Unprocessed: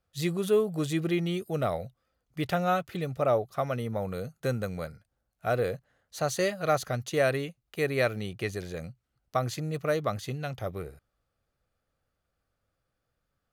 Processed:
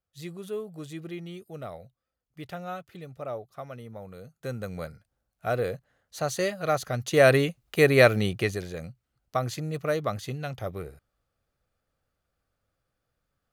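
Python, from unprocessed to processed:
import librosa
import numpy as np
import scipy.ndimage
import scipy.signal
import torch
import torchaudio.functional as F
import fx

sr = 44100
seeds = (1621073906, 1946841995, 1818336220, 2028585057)

y = fx.gain(x, sr, db=fx.line((4.19, -10.0), (4.8, 0.0), (6.88, 0.0), (7.32, 9.0), (8.27, 9.0), (8.7, 0.5)))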